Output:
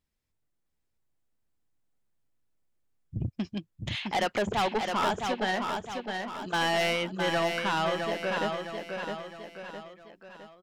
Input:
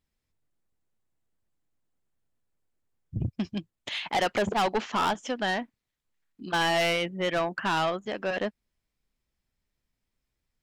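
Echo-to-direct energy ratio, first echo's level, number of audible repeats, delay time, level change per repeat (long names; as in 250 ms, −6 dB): −4.0 dB, −5.0 dB, 4, 661 ms, −6.5 dB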